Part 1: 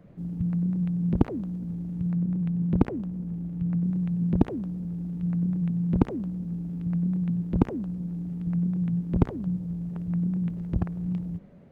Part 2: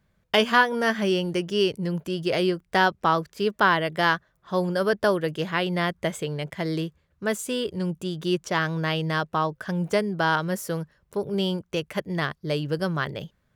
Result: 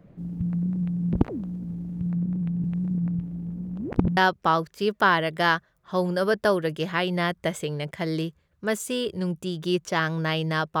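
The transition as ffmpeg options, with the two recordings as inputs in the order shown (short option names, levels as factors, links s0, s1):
-filter_complex "[0:a]apad=whole_dur=10.8,atrim=end=10.8,asplit=2[s0][s1];[s0]atrim=end=2.642[s2];[s1]atrim=start=2.638:end=4.172,asetpts=PTS-STARTPTS,areverse[s3];[1:a]atrim=start=2.758:end=9.39[s4];[s2][s3]acrossfade=d=0.004:c1=hsin:c2=hsin[s5];[s5][s4]acrossfade=d=0.004:c1=hsin:c2=hsin"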